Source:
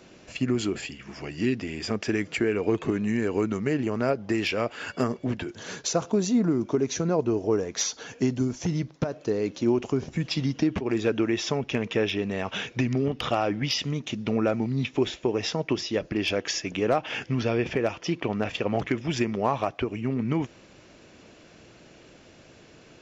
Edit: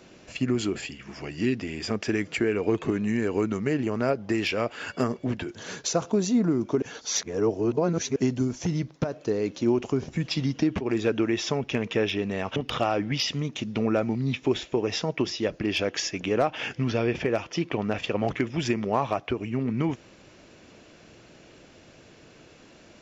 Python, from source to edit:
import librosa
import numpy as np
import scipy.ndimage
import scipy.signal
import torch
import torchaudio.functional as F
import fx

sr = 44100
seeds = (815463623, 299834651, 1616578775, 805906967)

y = fx.edit(x, sr, fx.reverse_span(start_s=6.82, length_s=1.34),
    fx.cut(start_s=12.56, length_s=0.51), tone=tone)